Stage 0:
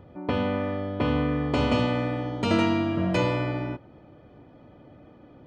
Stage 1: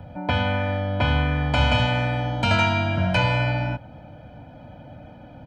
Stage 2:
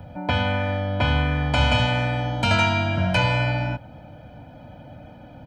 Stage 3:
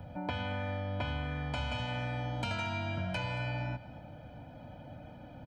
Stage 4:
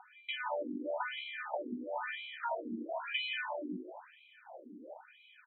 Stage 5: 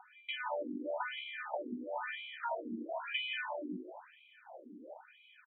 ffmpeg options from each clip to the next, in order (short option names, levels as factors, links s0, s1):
-filter_complex "[0:a]aecho=1:1:1.3:0.9,acrossover=split=120|820|3400[s0][s1][s2][s3];[s1]acompressor=threshold=0.02:ratio=6[s4];[s3]alimiter=level_in=3.16:limit=0.0631:level=0:latency=1:release=326,volume=0.316[s5];[s0][s4][s2][s5]amix=inputs=4:normalize=0,volume=2"
-af "highshelf=f=6700:g=7.5"
-af "acompressor=threshold=0.0447:ratio=6,aecho=1:1:227:0.15,volume=0.501"
-filter_complex "[0:a]asplit=2[s0][s1];[s1]adelay=17,volume=0.501[s2];[s0][s2]amix=inputs=2:normalize=0,asplit=4[s3][s4][s5][s6];[s4]adelay=169,afreqshift=68,volume=0.335[s7];[s5]adelay=338,afreqshift=136,volume=0.1[s8];[s6]adelay=507,afreqshift=204,volume=0.0302[s9];[s3][s7][s8][s9]amix=inputs=4:normalize=0,afftfilt=real='re*between(b*sr/1024,300*pow(3000/300,0.5+0.5*sin(2*PI*1*pts/sr))/1.41,300*pow(3000/300,0.5+0.5*sin(2*PI*1*pts/sr))*1.41)':imag='im*between(b*sr/1024,300*pow(3000/300,0.5+0.5*sin(2*PI*1*pts/sr))/1.41,300*pow(3000/300,0.5+0.5*sin(2*PI*1*pts/sr))*1.41)':win_size=1024:overlap=0.75,volume=1.78"
-af "aresample=8000,aresample=44100,volume=0.891"